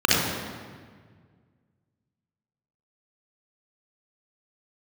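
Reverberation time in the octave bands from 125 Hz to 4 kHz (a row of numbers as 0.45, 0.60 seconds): 2.6, 2.1, 1.8, 1.6, 1.5, 1.2 seconds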